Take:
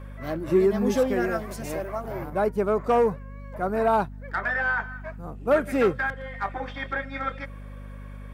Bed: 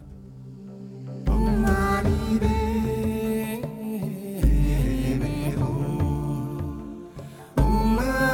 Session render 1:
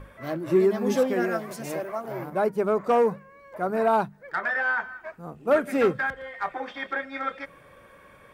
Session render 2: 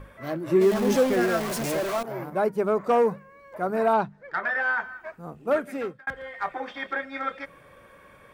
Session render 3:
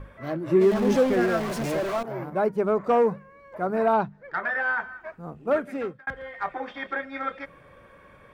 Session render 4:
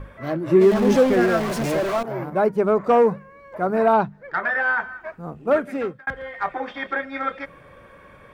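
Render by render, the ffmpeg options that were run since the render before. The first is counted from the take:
-af "bandreject=f=50:t=h:w=6,bandreject=f=100:t=h:w=6,bandreject=f=150:t=h:w=6,bandreject=f=200:t=h:w=6,bandreject=f=250:t=h:w=6"
-filter_complex "[0:a]asettb=1/sr,asplit=3[s0][s1][s2];[s0]atrim=end=0.614[s3];[s1]atrim=start=0.61:end=2.03,asetpts=PTS-STARTPTS,afade=t=in:d=0.004:c=qsin,afade=t=out:st=1.416:d=0.004:c=qsin,aeval=exprs='val(0)+0.5*0.0447*sgn(val(0))':c=same[s4];[s2]atrim=start=2.026[s5];[s3][s4]acrossfade=d=0.004:c1=hsin:c2=qsin[s6];[s6][s5]acrossfade=d=0.004:c1=qsin:c2=hsin,asettb=1/sr,asplit=3[s7][s8][s9];[s7]atrim=end=3.934[s10];[s8]atrim=start=3.93:end=4.6,asetpts=PTS-STARTPTS,afade=t=in:d=0.004:c=qsin,afade=t=out:st=0.666:d=0.004:c=qsin,lowpass=5400[s11];[s9]atrim=start=4.596[s12];[s10][s11]acrossfade=d=0.004:c1=hsin:c2=qsin[s13];[s13][s12]acrossfade=d=0.004:c1=qsin:c2=hsin,asplit=2[s14][s15];[s14]atrim=end=6.07,asetpts=PTS-STARTPTS,afade=t=out:st=5.34:d=0.73[s16];[s15]atrim=start=6.07,asetpts=PTS-STARTPTS,afade=t=in:d=0.004:c=hsin[s17];[s16][s17]concat=n=2:v=0:a=1"
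-af "lowpass=f=3700:p=1,lowshelf=f=160:g=4"
-af "volume=1.68"

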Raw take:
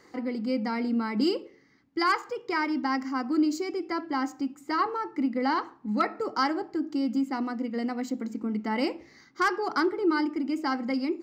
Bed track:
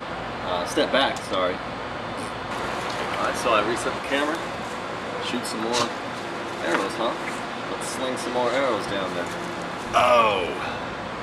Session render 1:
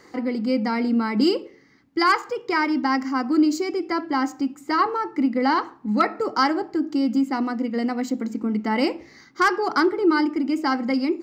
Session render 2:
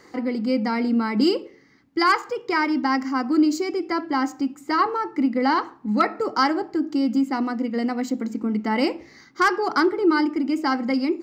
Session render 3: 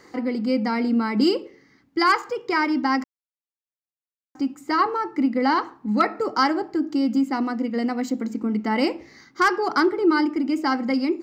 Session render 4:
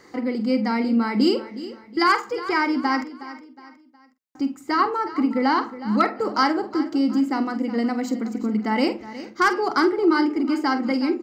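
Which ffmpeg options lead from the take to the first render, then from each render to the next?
-af "volume=2"
-af anull
-filter_complex "[0:a]asplit=3[s0][s1][s2];[s0]atrim=end=3.04,asetpts=PTS-STARTPTS,afade=t=out:st=3.036:d=0.004:c=hsin[s3];[s1]atrim=start=3.04:end=4.35,asetpts=PTS-STARTPTS,volume=0[s4];[s2]atrim=start=4.35,asetpts=PTS-STARTPTS,afade=t=in:d=0.004:c=hsin[s5];[s3][s4][s5]concat=n=3:v=0:a=1"
-filter_complex "[0:a]asplit=2[s0][s1];[s1]adelay=47,volume=0.251[s2];[s0][s2]amix=inputs=2:normalize=0,aecho=1:1:365|730|1095:0.178|0.0676|0.0257"

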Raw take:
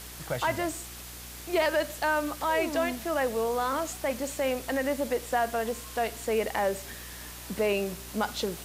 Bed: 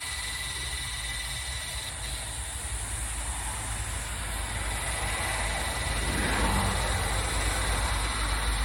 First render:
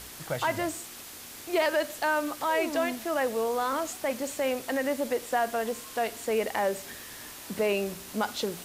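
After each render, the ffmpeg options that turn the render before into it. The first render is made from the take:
-af "bandreject=f=60:t=h:w=4,bandreject=f=120:t=h:w=4,bandreject=f=180:t=h:w=4"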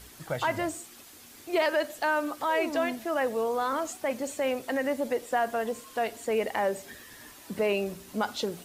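-af "afftdn=nr=8:nf=-44"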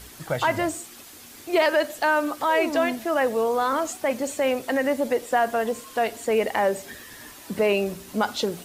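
-af "volume=1.88"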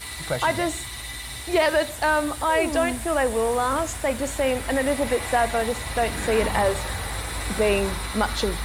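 -filter_complex "[1:a]volume=0.841[s0];[0:a][s0]amix=inputs=2:normalize=0"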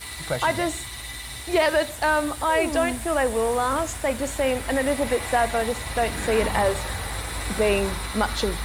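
-af "aeval=exprs='sgn(val(0))*max(abs(val(0))-0.00237,0)':c=same"

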